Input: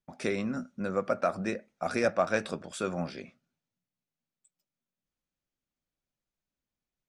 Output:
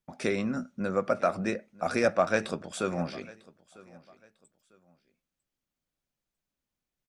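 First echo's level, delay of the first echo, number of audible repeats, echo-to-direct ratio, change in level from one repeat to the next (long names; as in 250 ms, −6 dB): −22.0 dB, 949 ms, 2, −21.5 dB, −11.0 dB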